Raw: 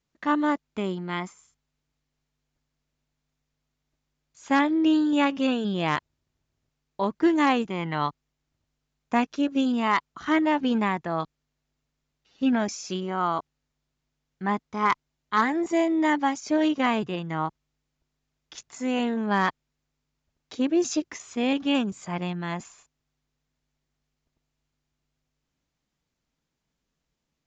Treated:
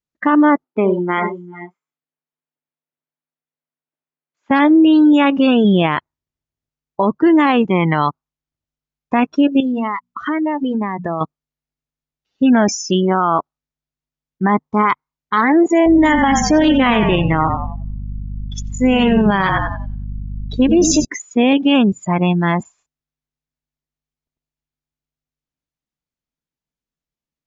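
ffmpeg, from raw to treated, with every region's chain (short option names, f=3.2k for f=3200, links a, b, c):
-filter_complex "[0:a]asettb=1/sr,asplit=3[a][b][c];[a]atrim=end=0.644[d];[b]atrim=start=0.64:end=4.51,asetpts=PTS-STARTPTS,afade=t=in:d=0.004:c=qsin,afade=t=out:st=3.866:d=0.004:c=qsin,highpass=260,lowpass=2.6k,aecho=1:1:65|67|90|389|439|468:0.251|0.237|0.251|0.1|0.211|0.126,atrim=end_sample=170667[e];[c]atrim=start=4.506[f];[d][e]acrossfade=d=0.004:c1=hsin:c2=qsin[g];[g][f]acrossfade=d=0.004:c1=qsin:c2=hsin,asettb=1/sr,asplit=3[h][i][j];[h]atrim=end=9.604[k];[i]atrim=start=9.6:end=11.21,asetpts=PTS-STARTPTS,afade=t=in:d=0.004:c=qsin,afade=t=out:st=1.606:d=0.004:c=qsin,bandreject=f=60:t=h:w=6,bandreject=f=120:t=h:w=6,bandreject=f=180:t=h:w=6,bandreject=f=240:t=h:w=6,acompressor=threshold=-31dB:ratio=16:attack=3.2:release=140:knee=1:detection=peak[l];[j]atrim=start=11.206[m];[k][l]acrossfade=d=0.004:c1=hsin:c2=qsin[n];[n][m]acrossfade=d=0.004:c1=qsin:c2=hsin,asettb=1/sr,asplit=3[o][p][q];[o]atrim=end=15.864[r];[p]atrim=start=15.86:end=21.05,asetpts=PTS-STARTPTS,afade=t=in:d=0.004:c=qsin,afade=t=out:st=5.186:d=0.004:c=qsin,aeval=exprs='val(0)+0.01*(sin(2*PI*50*n/s)+sin(2*PI*2*50*n/s)/2+sin(2*PI*3*50*n/s)/3+sin(2*PI*4*50*n/s)/4+sin(2*PI*5*50*n/s)/5)':c=same,asplit=7[s][t][u][v][w][x][y];[t]adelay=92,afreqshift=-32,volume=-9dB[z];[u]adelay=184,afreqshift=-64,volume=-14.4dB[aa];[v]adelay=276,afreqshift=-96,volume=-19.7dB[ab];[w]adelay=368,afreqshift=-128,volume=-25.1dB[ac];[x]adelay=460,afreqshift=-160,volume=-30.4dB[ad];[y]adelay=552,afreqshift=-192,volume=-35.8dB[ae];[s][z][aa][ab][ac][ad][ae]amix=inputs=7:normalize=0,atrim=end_sample=228879,adynamicequalizer=threshold=0.02:dfrequency=1900:dqfactor=0.7:tfrequency=1900:tqfactor=0.7:attack=5:release=100:ratio=0.375:range=2:mode=boostabove:tftype=highshelf[af];[q]atrim=start=21.046[ag];[r][af]acrossfade=d=0.004:c1=hsin:c2=qsin[ah];[ah][ag]acrossfade=d=0.004:c1=qsin:c2=hsin,afftdn=nr=27:nf=-35,alimiter=level_in=20.5dB:limit=-1dB:release=50:level=0:latency=1,volume=-4.5dB"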